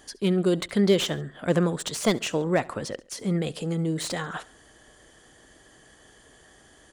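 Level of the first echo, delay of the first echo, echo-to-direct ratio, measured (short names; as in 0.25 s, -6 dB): -22.0 dB, 69 ms, -21.0 dB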